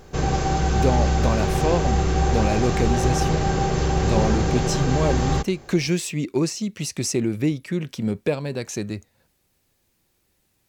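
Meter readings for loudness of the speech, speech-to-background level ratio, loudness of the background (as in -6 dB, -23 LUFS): -25.5 LUFS, -3.0 dB, -22.5 LUFS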